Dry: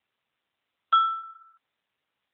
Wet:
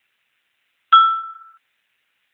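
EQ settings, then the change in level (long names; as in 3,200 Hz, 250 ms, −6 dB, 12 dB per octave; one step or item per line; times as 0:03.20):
flat-topped bell 2,000 Hz +8.5 dB 1.2 octaves
high-shelf EQ 3,100 Hz +12 dB
+3.5 dB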